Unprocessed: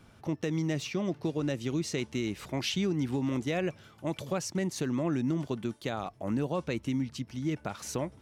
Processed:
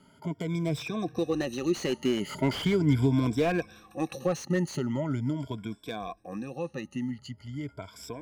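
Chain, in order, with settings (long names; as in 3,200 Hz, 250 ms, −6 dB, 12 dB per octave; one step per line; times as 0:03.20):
rippled gain that drifts along the octave scale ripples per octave 1.7, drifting +0.45 Hz, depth 22 dB
source passing by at 0:02.62, 21 m/s, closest 27 metres
slew-rate limiting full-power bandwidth 48 Hz
level +2 dB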